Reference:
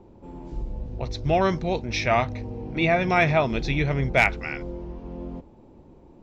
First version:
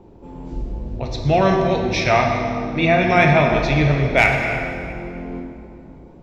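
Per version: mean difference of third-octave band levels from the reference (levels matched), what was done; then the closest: 4.5 dB: plate-style reverb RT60 2.4 s, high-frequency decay 0.75×, DRR 1 dB; trim +3.5 dB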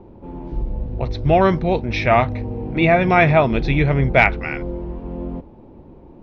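1.5 dB: distance through air 240 m; trim +7.5 dB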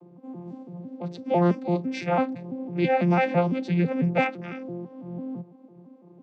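6.5 dB: vocoder on a broken chord bare fifth, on F3, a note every 167 ms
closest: second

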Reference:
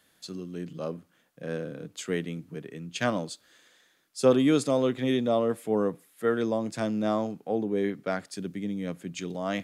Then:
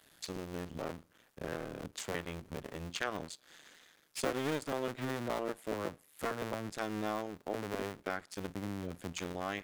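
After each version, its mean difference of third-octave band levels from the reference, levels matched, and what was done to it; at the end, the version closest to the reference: 11.0 dB: cycle switcher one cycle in 2, muted; dynamic bell 1.6 kHz, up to +5 dB, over -44 dBFS, Q 0.88; compression 2.5:1, threshold -45 dBFS, peak gain reduction 19 dB; trim +5 dB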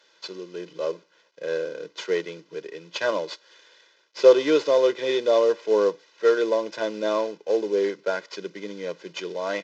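7.5 dB: CVSD coder 32 kbps; high-pass 250 Hz 24 dB/octave; comb 2 ms, depth 90%; trim +3 dB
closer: second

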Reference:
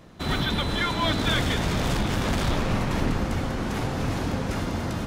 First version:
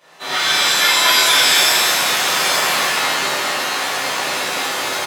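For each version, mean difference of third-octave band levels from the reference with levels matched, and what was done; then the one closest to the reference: 11.5 dB: high-pass 720 Hz 12 dB/octave; delay 221 ms -4.5 dB; pitch-shifted reverb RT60 1 s, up +7 st, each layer -2 dB, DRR -11 dB; trim -1 dB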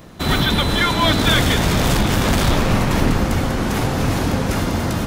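1.5 dB: treble shelf 11 kHz +11.5 dB; trim +8 dB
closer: second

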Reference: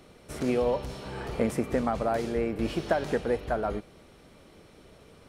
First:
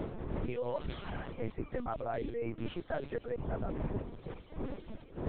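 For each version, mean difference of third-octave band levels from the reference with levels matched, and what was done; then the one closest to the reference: 9.5 dB: wind noise 320 Hz -30 dBFS; reverb removal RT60 1.1 s; reverse; compression 6:1, threshold -40 dBFS, peak gain reduction 20 dB; reverse; LPC vocoder at 8 kHz pitch kept; trim +5.5 dB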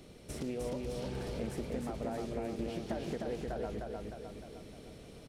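6.5 dB: peaking EQ 1.2 kHz -9.5 dB 1.8 oct; compression 3:1, threshold -41 dBFS, peak gain reduction 13.5 dB; on a send: feedback delay 306 ms, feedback 54%, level -3 dB; on the sum: loudspeaker Doppler distortion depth 0.24 ms; trim +1.5 dB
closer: second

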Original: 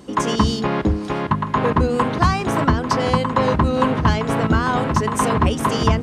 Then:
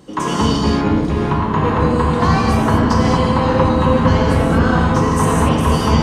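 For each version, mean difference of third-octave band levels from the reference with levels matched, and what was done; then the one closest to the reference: 4.5 dB: on a send: feedback echo behind a low-pass 254 ms, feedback 79%, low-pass 470 Hz, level -4 dB; on the sum: gated-style reverb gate 260 ms flat, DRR -3.5 dB; trim -3 dB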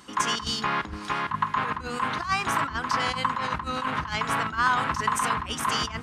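6.5 dB: compressor with a negative ratio -19 dBFS, ratio -0.5; resonant low shelf 790 Hz -12 dB, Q 1.5; trim -2 dB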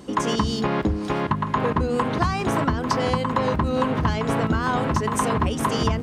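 1.5 dB: crackle 21 per s -35 dBFS; compression, threshold -18 dBFS, peak gain reduction 7.5 dB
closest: third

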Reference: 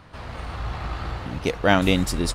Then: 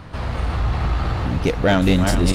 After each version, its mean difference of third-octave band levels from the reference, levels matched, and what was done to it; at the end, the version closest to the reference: 3.0 dB: backward echo that repeats 211 ms, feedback 48%, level -8 dB; bass shelf 380 Hz +6 dB; in parallel at +1 dB: compression, threshold -25 dBFS, peak gain reduction 15.5 dB; on the sum: saturation -8 dBFS, distortion -14 dB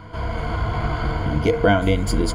4.5 dB: treble shelf 2 kHz -10 dB; de-hum 76.89 Hz, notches 35; compression 12:1, threshold -23 dBFS, peak gain reduction 11 dB; rippled EQ curve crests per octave 1.8, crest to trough 14 dB; trim +8.5 dB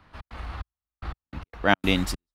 12.5 dB: ten-band graphic EQ 125 Hz -8 dB, 500 Hz -6 dB, 8 kHz -6 dB; in parallel at +1 dB: compression, threshold -36 dBFS, peak gain reduction 20 dB; on the sum: trance gate "xx.xxx....x..x." 147 bpm -60 dB; three bands expanded up and down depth 40%; trim -3.5 dB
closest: first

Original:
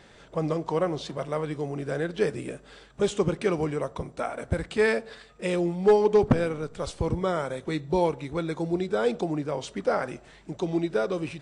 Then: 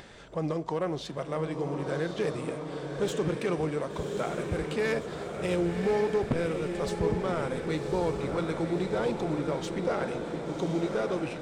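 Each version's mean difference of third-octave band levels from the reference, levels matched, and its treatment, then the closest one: 6.5 dB: self-modulated delay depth 0.066 ms; upward compressor, threshold -41 dBFS; peak limiter -18.5 dBFS, peak gain reduction 6.5 dB; echo that smears into a reverb 1111 ms, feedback 61%, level -5 dB; trim -2 dB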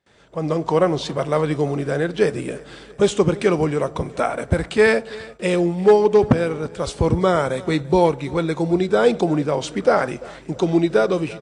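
2.0 dB: gate with hold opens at -43 dBFS; high-pass 47 Hz; level rider gain up to 16.5 dB; feedback delay 341 ms, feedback 46%, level -21 dB; trim -3 dB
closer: second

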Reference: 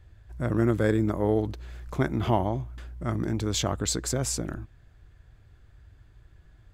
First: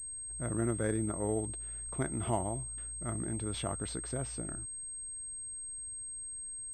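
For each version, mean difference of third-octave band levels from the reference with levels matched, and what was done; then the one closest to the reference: 4.0 dB: feedback comb 680 Hz, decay 0.15 s, harmonics all, mix 60%; class-D stage that switches slowly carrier 8.4 kHz; trim -1.5 dB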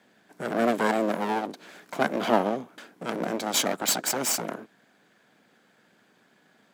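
8.0 dB: comb filter that takes the minimum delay 1.3 ms; steep high-pass 200 Hz 36 dB/octave; trim +6.5 dB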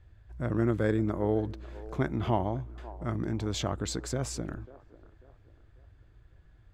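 2.5 dB: treble shelf 7.1 kHz -11.5 dB; feedback echo behind a band-pass 543 ms, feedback 37%, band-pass 640 Hz, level -16.5 dB; trim -3.5 dB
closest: third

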